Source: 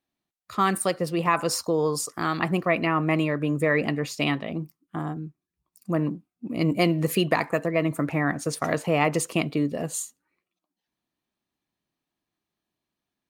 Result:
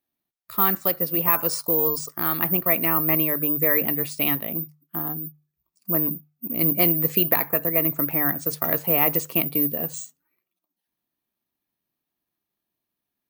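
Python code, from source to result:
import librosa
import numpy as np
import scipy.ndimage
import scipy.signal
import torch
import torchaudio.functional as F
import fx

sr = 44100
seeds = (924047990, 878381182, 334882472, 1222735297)

y = (np.kron(scipy.signal.resample_poly(x, 1, 3), np.eye(3)[0]) * 3)[:len(x)]
y = fx.hum_notches(y, sr, base_hz=50, count=3)
y = F.gain(torch.from_numpy(y), -2.5).numpy()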